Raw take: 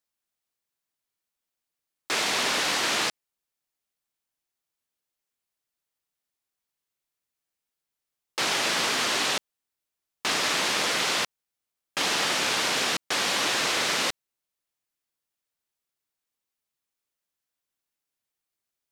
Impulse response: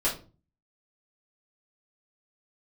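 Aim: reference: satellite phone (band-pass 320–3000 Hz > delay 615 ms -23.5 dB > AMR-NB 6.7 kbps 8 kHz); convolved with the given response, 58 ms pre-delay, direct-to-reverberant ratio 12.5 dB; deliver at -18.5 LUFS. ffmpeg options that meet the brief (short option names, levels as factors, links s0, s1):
-filter_complex "[0:a]asplit=2[s0][s1];[1:a]atrim=start_sample=2205,adelay=58[s2];[s1][s2]afir=irnorm=-1:irlink=0,volume=0.0794[s3];[s0][s3]amix=inputs=2:normalize=0,highpass=320,lowpass=3000,aecho=1:1:615:0.0668,volume=5.31" -ar 8000 -c:a libopencore_amrnb -b:a 6700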